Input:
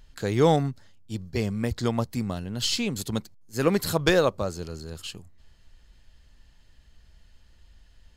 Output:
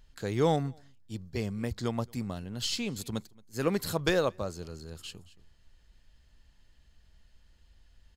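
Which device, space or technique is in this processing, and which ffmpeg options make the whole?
ducked delay: -filter_complex "[0:a]asplit=3[s0][s1][s2];[s1]adelay=224,volume=0.376[s3];[s2]apad=whole_len=369946[s4];[s3][s4]sidechaincompress=threshold=0.00794:ratio=6:attack=7.2:release=894[s5];[s0][s5]amix=inputs=2:normalize=0,volume=0.501"

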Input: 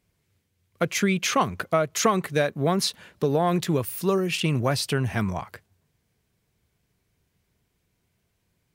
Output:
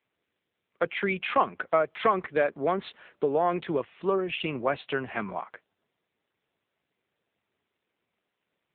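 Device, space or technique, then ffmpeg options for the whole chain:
telephone: -af "highpass=340,lowpass=3200" -ar 8000 -c:a libopencore_amrnb -b:a 7950

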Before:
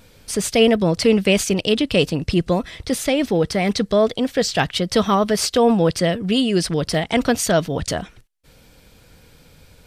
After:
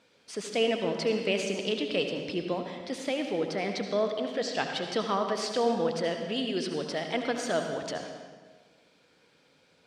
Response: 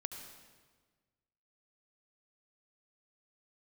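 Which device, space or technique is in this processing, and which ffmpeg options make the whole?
supermarket ceiling speaker: -filter_complex "[0:a]highpass=280,lowpass=5500[s0];[1:a]atrim=start_sample=2205[s1];[s0][s1]afir=irnorm=-1:irlink=0,volume=0.398"

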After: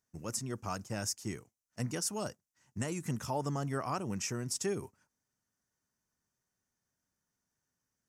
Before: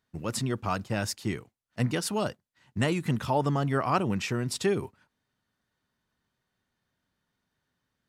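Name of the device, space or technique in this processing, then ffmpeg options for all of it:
over-bright horn tweeter: -af "highshelf=f=4800:t=q:w=3:g=7.5,alimiter=limit=0.178:level=0:latency=1:release=178,volume=0.398"

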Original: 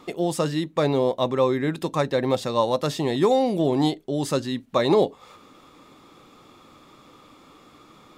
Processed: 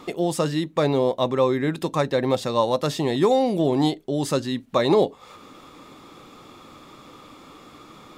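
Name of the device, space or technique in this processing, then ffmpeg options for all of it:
parallel compression: -filter_complex "[0:a]asplit=2[s0][s1];[s1]acompressor=threshold=0.0112:ratio=6,volume=0.794[s2];[s0][s2]amix=inputs=2:normalize=0"

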